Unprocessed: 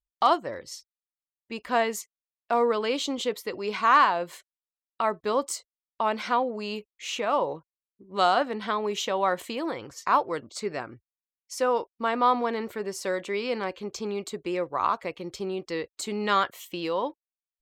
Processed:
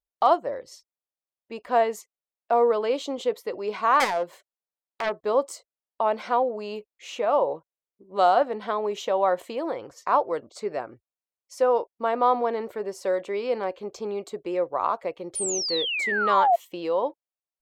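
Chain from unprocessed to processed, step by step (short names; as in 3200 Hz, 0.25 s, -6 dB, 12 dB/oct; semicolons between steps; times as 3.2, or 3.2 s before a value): 4–5.23 self-modulated delay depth 0.5 ms; 15.35–16.56 painted sound fall 660–9900 Hz -22 dBFS; bell 600 Hz +12.5 dB 1.7 oct; gain -7 dB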